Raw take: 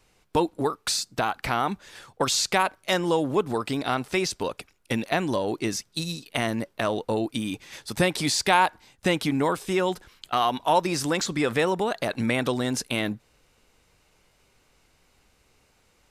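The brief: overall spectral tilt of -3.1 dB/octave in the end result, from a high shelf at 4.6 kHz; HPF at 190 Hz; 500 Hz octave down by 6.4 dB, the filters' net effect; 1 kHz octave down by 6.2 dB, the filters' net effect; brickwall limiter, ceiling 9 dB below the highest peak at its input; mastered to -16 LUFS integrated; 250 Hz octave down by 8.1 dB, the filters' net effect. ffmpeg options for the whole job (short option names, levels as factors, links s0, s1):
-af "highpass=190,equalizer=f=250:t=o:g=-7.5,equalizer=f=500:t=o:g=-4,equalizer=f=1000:t=o:g=-5.5,highshelf=f=4600:g=-8.5,volume=7.08,alimiter=limit=0.841:level=0:latency=1"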